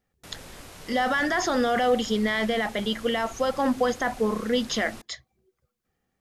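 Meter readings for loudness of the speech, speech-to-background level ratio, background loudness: −25.5 LKFS, 18.5 dB, −44.0 LKFS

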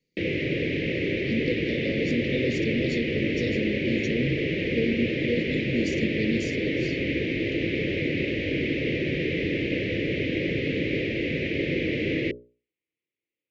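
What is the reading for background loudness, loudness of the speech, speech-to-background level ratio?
−27.0 LKFS, −31.0 LKFS, −4.0 dB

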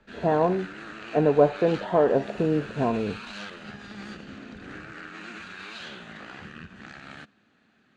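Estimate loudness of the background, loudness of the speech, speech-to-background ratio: −40.5 LKFS, −24.5 LKFS, 16.0 dB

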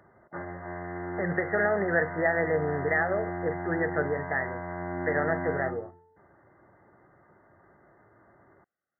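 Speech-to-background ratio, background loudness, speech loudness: 7.0 dB, −36.0 LKFS, −29.0 LKFS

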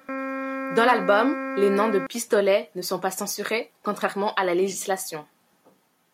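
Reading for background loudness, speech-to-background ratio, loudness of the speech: −30.5 LKFS, 6.5 dB, −24.0 LKFS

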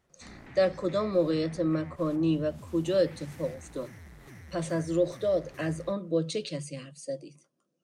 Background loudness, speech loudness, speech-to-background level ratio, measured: −49.0 LKFS, −30.0 LKFS, 19.0 dB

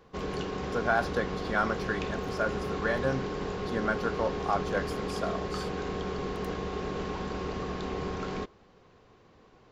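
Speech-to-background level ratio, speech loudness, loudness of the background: 2.0 dB, −32.5 LKFS, −34.5 LKFS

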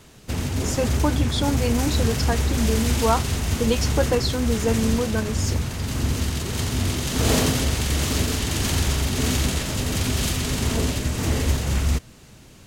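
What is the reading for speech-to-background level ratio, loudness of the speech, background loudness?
−1.5 dB, −25.5 LKFS, −24.0 LKFS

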